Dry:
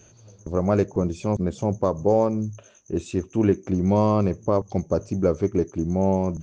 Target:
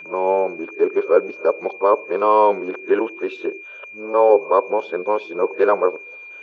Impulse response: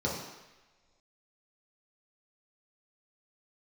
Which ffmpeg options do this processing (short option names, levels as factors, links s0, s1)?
-filter_complex "[0:a]areverse,highpass=f=400:w=0.5412,highpass=f=400:w=1.3066,equalizer=f=450:t=q:w=4:g=5,equalizer=f=680:t=q:w=4:g=-5,equalizer=f=1000:t=q:w=4:g=7,equalizer=f=1500:t=q:w=4:g=8,equalizer=f=2200:t=q:w=4:g=-5,equalizer=f=3200:t=q:w=4:g=4,lowpass=f=3400:w=0.5412,lowpass=f=3400:w=1.3066,asplit=2[s0][s1];[1:a]atrim=start_sample=2205,atrim=end_sample=3969,asetrate=30870,aresample=44100[s2];[s1][s2]afir=irnorm=-1:irlink=0,volume=0.0355[s3];[s0][s3]amix=inputs=2:normalize=0,aeval=exprs='val(0)+0.00794*sin(2*PI*2400*n/s)':c=same,volume=2.11"